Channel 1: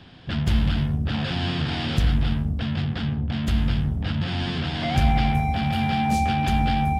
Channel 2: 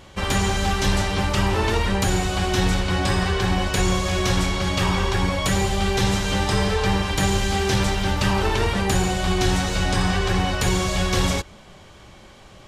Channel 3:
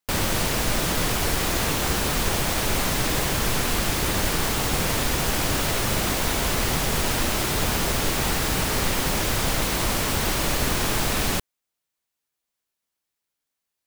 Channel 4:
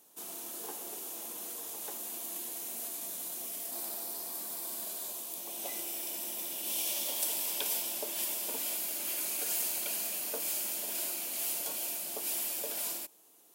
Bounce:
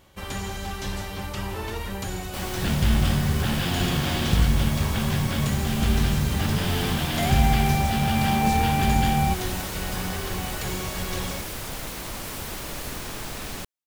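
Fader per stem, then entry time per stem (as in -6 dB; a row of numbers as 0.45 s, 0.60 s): 0.0 dB, -10.5 dB, -10.5 dB, -8.0 dB; 2.35 s, 0.00 s, 2.25 s, 0.00 s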